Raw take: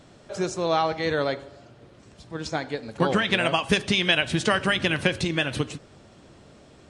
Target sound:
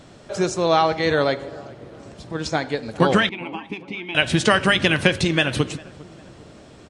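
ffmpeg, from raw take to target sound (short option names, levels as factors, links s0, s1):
-filter_complex "[0:a]asettb=1/sr,asplit=3[s0][s1][s2];[s0]atrim=end=1.414[s3];[s1]atrim=start=1.41:end=2.33,asetpts=PTS-STARTPTS,afade=t=in:d=0.004:c=qsin,afade=t=out:st=0.916:d=0.004:c=qsin,equalizer=f=390:w=0.37:g=5[s4];[s2]atrim=start=2.326[s5];[s3][s4]acrossfade=d=0.004:c1=hsin:c2=qsin[s6];[s6][s5]acrossfade=d=0.004:c1=qsin:c2=hsin,asettb=1/sr,asplit=3[s7][s8][s9];[s7]atrim=end=3.294[s10];[s8]atrim=start=3.29:end=4.15,asetpts=PTS-STARTPTS,afade=t=in:d=0.004:c=qsin,afade=t=out:st=0.856:d=0.004:c=qsin,asplit=3[s11][s12][s13];[s11]bandpass=f=300:t=q:w=8,volume=1[s14];[s12]bandpass=f=870:t=q:w=8,volume=0.501[s15];[s13]bandpass=f=2240:t=q:w=8,volume=0.355[s16];[s14][s15][s16]amix=inputs=3:normalize=0[s17];[s9]atrim=start=4.146[s18];[s10][s17]acrossfade=d=0.004:c1=hsin:c2=qsin[s19];[s19][s18]acrossfade=d=0.004:c1=qsin:c2=hsin,asplit=2[s20][s21];[s21]adelay=401,lowpass=f=1500:p=1,volume=0.0891,asplit=2[s22][s23];[s23]adelay=401,lowpass=f=1500:p=1,volume=0.49,asplit=2[s24][s25];[s25]adelay=401,lowpass=f=1500:p=1,volume=0.49,asplit=2[s26][s27];[s27]adelay=401,lowpass=f=1500:p=1,volume=0.49[s28];[s20][s22][s24][s26][s28]amix=inputs=5:normalize=0,volume=1.88"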